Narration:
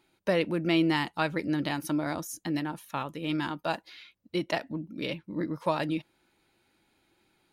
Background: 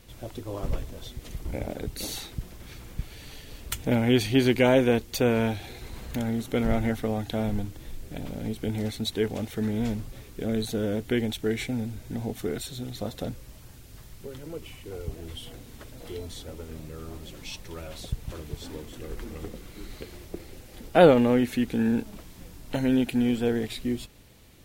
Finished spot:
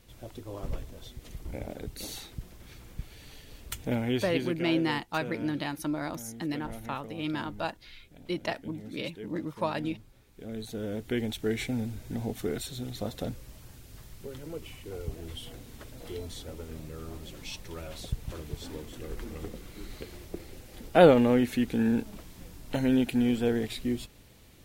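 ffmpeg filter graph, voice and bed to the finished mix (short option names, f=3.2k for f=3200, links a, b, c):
-filter_complex "[0:a]adelay=3950,volume=-2.5dB[a];[1:a]volume=10dB,afade=t=out:st=3.91:d=0.72:silence=0.266073,afade=t=in:st=10.24:d=1.41:silence=0.16788[b];[a][b]amix=inputs=2:normalize=0"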